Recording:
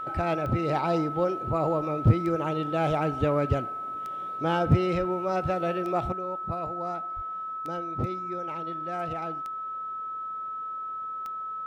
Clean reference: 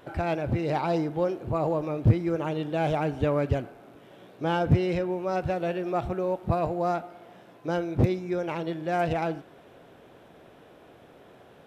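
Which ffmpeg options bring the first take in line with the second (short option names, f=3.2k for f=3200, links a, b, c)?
-filter_complex "[0:a]adeclick=t=4,bandreject=f=1.3k:w=30,asplit=3[a][b][c];[a]afade=t=out:st=4.98:d=0.02[d];[b]highpass=f=140:w=0.5412,highpass=f=140:w=1.3066,afade=t=in:st=4.98:d=0.02,afade=t=out:st=5.1:d=0.02[e];[c]afade=t=in:st=5.1:d=0.02[f];[d][e][f]amix=inputs=3:normalize=0,asplit=3[g][h][i];[g]afade=t=out:st=7.15:d=0.02[j];[h]highpass=f=140:w=0.5412,highpass=f=140:w=1.3066,afade=t=in:st=7.15:d=0.02,afade=t=out:st=7.27:d=0.02[k];[i]afade=t=in:st=7.27:d=0.02[l];[j][k][l]amix=inputs=3:normalize=0,asetnsamples=n=441:p=0,asendcmd='6.12 volume volume 8.5dB',volume=0dB"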